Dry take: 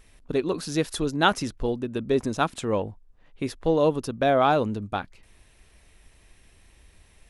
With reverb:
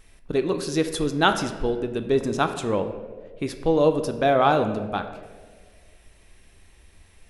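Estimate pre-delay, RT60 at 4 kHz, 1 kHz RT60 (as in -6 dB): 3 ms, 0.90 s, 1.4 s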